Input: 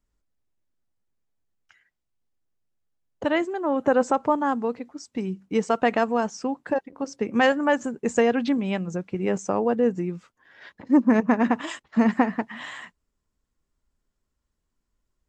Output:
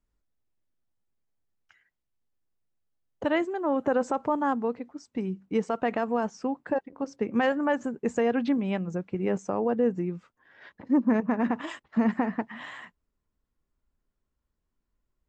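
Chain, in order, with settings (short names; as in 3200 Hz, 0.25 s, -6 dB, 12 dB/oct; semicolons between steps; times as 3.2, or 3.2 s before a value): limiter -13.5 dBFS, peak gain reduction 6 dB; high shelf 4000 Hz -6 dB, from 4.53 s -11.5 dB; gain -2 dB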